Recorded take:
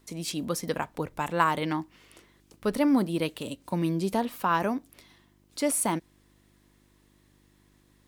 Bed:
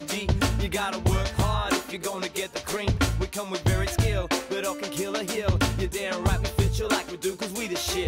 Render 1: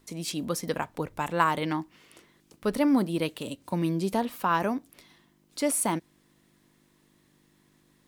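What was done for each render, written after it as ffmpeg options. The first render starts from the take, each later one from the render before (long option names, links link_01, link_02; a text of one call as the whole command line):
ffmpeg -i in.wav -af "bandreject=frequency=50:width_type=h:width=4,bandreject=frequency=100:width_type=h:width=4" out.wav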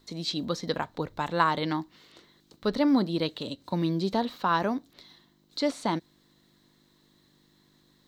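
ffmpeg -i in.wav -filter_complex "[0:a]acrossover=split=6200[link_01][link_02];[link_02]acompressor=threshold=-58dB:ratio=4:attack=1:release=60[link_03];[link_01][link_03]amix=inputs=2:normalize=0,equalizer=frequency=2500:width_type=o:width=0.33:gain=-6,equalizer=frequency=4000:width_type=o:width=0.33:gain=12,equalizer=frequency=10000:width_type=o:width=0.33:gain=-11" out.wav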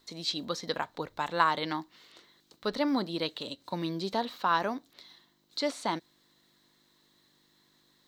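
ffmpeg -i in.wav -af "lowshelf=frequency=340:gain=-11" out.wav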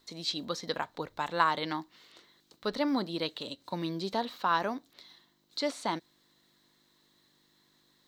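ffmpeg -i in.wav -af "volume=-1dB" out.wav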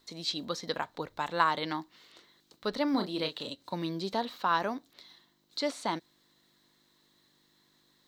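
ffmpeg -i in.wav -filter_complex "[0:a]asettb=1/sr,asplit=3[link_01][link_02][link_03];[link_01]atrim=end=2.914[link_04];[link_02]atrim=start=2.91:end=3.5,asetpts=PTS-STARTPTS,afade=type=in:duration=0.004:curve=qsin,afade=type=out:start_time=0.586:duration=0.004:curve=qsin,asplit=2[link_05][link_06];[link_06]adelay=33,volume=-7dB[link_07];[link_05][link_07]amix=inputs=2:normalize=0,atrim=end_sample=26019[link_08];[link_03]atrim=start=3.496[link_09];[link_04][link_08]acrossfade=duration=0.004:curve1=hsin:curve2=qsin[link_10];[link_10][link_09]acrossfade=duration=0.004:curve1=qsin:curve2=hsin" out.wav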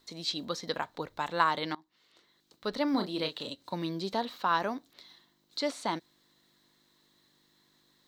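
ffmpeg -i in.wav -filter_complex "[0:a]asplit=2[link_01][link_02];[link_01]atrim=end=1.75,asetpts=PTS-STARTPTS,afade=type=out:start_time=1.746:duration=0.004:curve=hsin:silence=0.0707946[link_03];[link_02]atrim=start=1.75,asetpts=PTS-STARTPTS,afade=type=in:duration=1.07:silence=0.0707946[link_04];[link_03][link_04]concat=n=2:v=0:a=1" out.wav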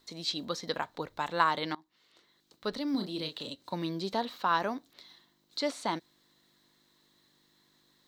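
ffmpeg -i in.wav -filter_complex "[0:a]asettb=1/sr,asplit=3[link_01][link_02][link_03];[link_01]atrim=end=2.724[link_04];[link_02]atrim=start=2.72:end=3.62,asetpts=PTS-STARTPTS,afade=type=in:duration=0.004:curve=qsin,afade=type=out:start_time=0.896:duration=0.004:curve=qsin,acrossover=split=350|3000[link_05][link_06][link_07];[link_06]acompressor=threshold=-43dB:ratio=6:attack=3.2:release=140:knee=2.83:detection=peak[link_08];[link_05][link_08][link_07]amix=inputs=3:normalize=0[link_09];[link_03]atrim=start=3.616[link_10];[link_04][link_09]acrossfade=duration=0.004:curve1=hsin:curve2=qsin[link_11];[link_11][link_10]acrossfade=duration=0.004:curve1=qsin:curve2=hsin" out.wav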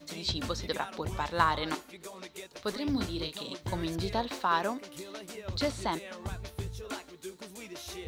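ffmpeg -i in.wav -i bed.wav -filter_complex "[1:a]volume=-14.5dB[link_01];[0:a][link_01]amix=inputs=2:normalize=0" out.wav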